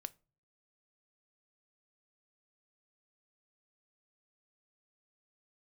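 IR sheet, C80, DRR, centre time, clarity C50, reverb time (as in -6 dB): 31.0 dB, 14.0 dB, 2 ms, 24.5 dB, no single decay rate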